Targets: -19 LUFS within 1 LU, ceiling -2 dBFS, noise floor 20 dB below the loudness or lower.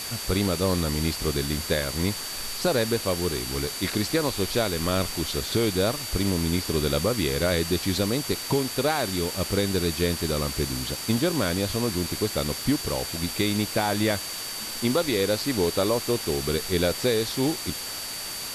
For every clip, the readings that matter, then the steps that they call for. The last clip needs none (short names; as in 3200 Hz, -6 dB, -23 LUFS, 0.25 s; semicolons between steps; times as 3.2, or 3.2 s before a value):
steady tone 4600 Hz; tone level -36 dBFS; noise floor -34 dBFS; noise floor target -46 dBFS; loudness -25.5 LUFS; peak -10.0 dBFS; loudness target -19.0 LUFS
-> notch 4600 Hz, Q 30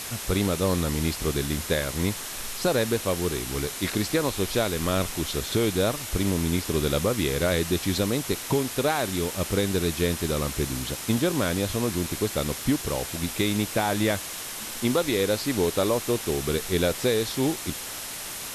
steady tone none; noise floor -36 dBFS; noise floor target -46 dBFS
-> noise print and reduce 10 dB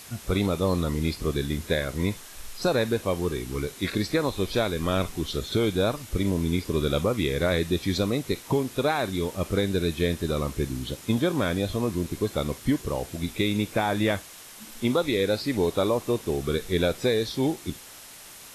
noise floor -45 dBFS; noise floor target -47 dBFS
-> noise print and reduce 6 dB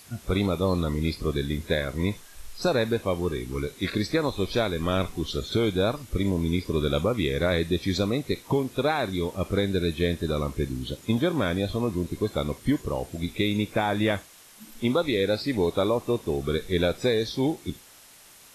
noise floor -51 dBFS; loudness -27.0 LUFS; peak -10.5 dBFS; loudness target -19.0 LUFS
-> gain +8 dB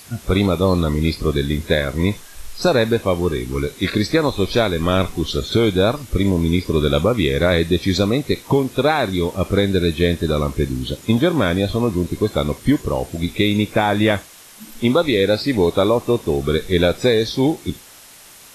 loudness -19.0 LUFS; peak -2.5 dBFS; noise floor -43 dBFS